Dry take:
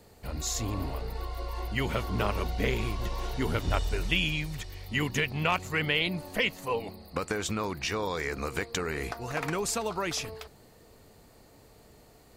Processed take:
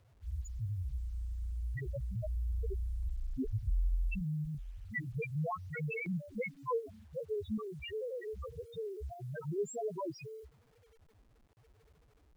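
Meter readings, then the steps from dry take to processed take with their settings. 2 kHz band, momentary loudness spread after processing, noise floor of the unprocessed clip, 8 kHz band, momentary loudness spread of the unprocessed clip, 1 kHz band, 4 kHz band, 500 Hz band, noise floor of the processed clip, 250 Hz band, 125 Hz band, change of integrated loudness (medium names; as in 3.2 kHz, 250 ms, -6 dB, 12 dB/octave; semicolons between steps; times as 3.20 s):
-14.5 dB, 8 LU, -57 dBFS, -20.5 dB, 10 LU, -12.5 dB, -25.0 dB, -6.5 dB, -66 dBFS, -8.0 dB, -4.5 dB, -8.5 dB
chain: loudest bins only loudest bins 1; LFO notch square 0.33 Hz 280–4400 Hz; word length cut 12-bit, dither none; trim +3.5 dB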